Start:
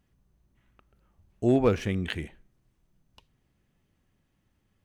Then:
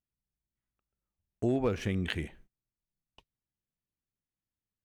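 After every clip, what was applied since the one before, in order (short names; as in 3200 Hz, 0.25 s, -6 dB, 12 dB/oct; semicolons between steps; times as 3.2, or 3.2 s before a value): gate -55 dBFS, range -25 dB; compressor 3:1, threshold -27 dBFS, peak gain reduction 8 dB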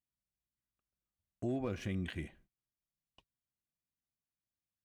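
limiter -22 dBFS, peak gain reduction 7.5 dB; notch comb 440 Hz; gain -5 dB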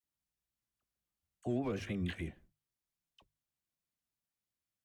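vibrato 6.4 Hz 94 cents; notches 50/100/150 Hz; dispersion lows, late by 40 ms, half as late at 910 Hz; gain +1 dB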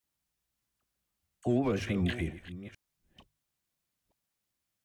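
reverse delay 0.458 s, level -14 dB; gain +7 dB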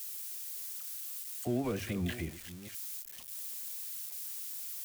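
switching spikes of -32 dBFS; gain -4.5 dB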